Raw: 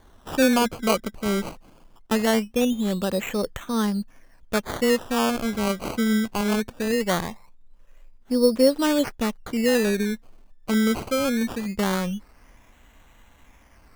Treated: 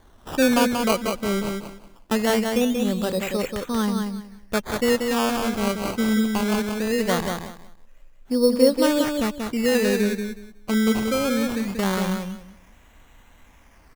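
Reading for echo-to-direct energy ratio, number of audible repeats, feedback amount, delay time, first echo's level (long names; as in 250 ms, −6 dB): −5.0 dB, 3, 21%, 184 ms, −5.0 dB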